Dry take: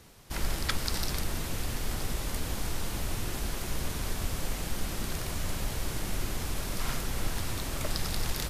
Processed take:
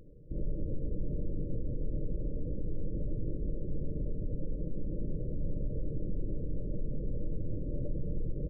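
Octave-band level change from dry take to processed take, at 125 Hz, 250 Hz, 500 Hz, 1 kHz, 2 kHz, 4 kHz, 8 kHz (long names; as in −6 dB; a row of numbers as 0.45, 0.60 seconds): −1.0 dB, 0.0 dB, −1.5 dB, below −40 dB, below −40 dB, below −40 dB, below −40 dB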